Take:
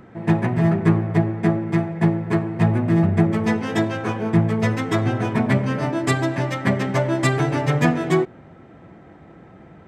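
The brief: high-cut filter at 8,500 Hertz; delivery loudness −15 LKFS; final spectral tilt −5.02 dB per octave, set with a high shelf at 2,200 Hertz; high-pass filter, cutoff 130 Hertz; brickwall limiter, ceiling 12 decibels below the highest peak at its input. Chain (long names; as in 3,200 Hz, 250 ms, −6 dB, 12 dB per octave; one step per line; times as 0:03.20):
high-pass filter 130 Hz
low-pass filter 8,500 Hz
high-shelf EQ 2,200 Hz +4 dB
level +10.5 dB
brickwall limiter −5.5 dBFS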